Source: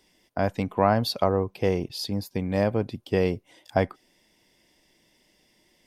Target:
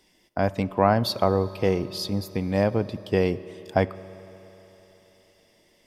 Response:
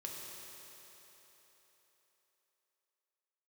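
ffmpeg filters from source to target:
-filter_complex "[0:a]asplit=2[a][b];[1:a]atrim=start_sample=2205,highshelf=f=11k:g=-9[c];[b][c]afir=irnorm=-1:irlink=0,volume=-11dB[d];[a][d]amix=inputs=2:normalize=0"

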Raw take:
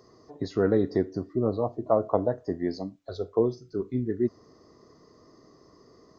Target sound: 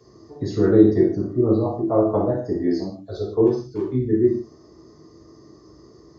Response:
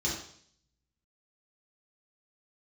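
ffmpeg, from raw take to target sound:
-filter_complex "[0:a]asettb=1/sr,asplit=3[a][b][c];[a]atrim=end=0.884[d];[b]atrim=start=0.88:end=1.34,asetpts=PTS-STARTPTS,afade=t=in:d=0.004:c=qsin,afade=t=out:st=0.456:d=0.004:c=qsin,equalizer=f=4.8k:t=o:w=0.78:g=-7.5[e];[c]atrim=start=1.336[f];[d][e]acrossfade=d=0.004:c1=hsin:c2=qsin[g];[g][f]acrossfade=d=0.004:c1=qsin:c2=hsin,asettb=1/sr,asplit=3[h][i][j];[h]atrim=end=3.464[k];[i]atrim=start=3.46:end=3.93,asetpts=PTS-STARTPTS,afade=t=in:d=0.004:c=qsin,afade=t=out:st=0.466:d=0.004:c=qsin,asoftclip=type=hard:threshold=-25.5dB[l];[j]atrim=start=3.926[m];[k][l]acrossfade=d=0.004:c1=hsin:c2=qsin[n];[n][m]acrossfade=d=0.004:c1=qsin:c2=hsin[o];[1:a]atrim=start_sample=2205,afade=t=out:st=0.23:d=0.01,atrim=end_sample=10584[p];[o][p]afir=irnorm=-1:irlink=0,volume=-3.5dB"

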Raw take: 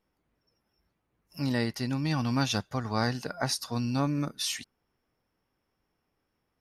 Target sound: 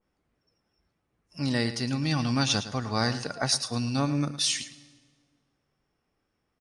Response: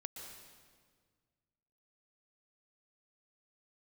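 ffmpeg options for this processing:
-filter_complex "[0:a]bandreject=f=940:w=17,aecho=1:1:110:0.224,asplit=2[a][b];[1:a]atrim=start_sample=2205[c];[b][c]afir=irnorm=-1:irlink=0,volume=-13dB[d];[a][d]amix=inputs=2:normalize=0,aresample=22050,aresample=44100,adynamicequalizer=threshold=0.00562:dfrequency=2400:dqfactor=0.7:tfrequency=2400:tqfactor=0.7:attack=5:release=100:ratio=0.375:range=2.5:mode=boostabove:tftype=highshelf"

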